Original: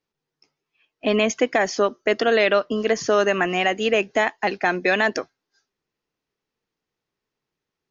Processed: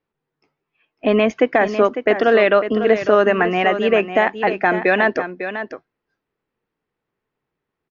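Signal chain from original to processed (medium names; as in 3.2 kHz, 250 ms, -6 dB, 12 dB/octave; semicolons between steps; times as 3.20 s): low-pass 2.2 kHz 12 dB/octave; on a send: delay 551 ms -10 dB; on the sum: trim +4.5 dB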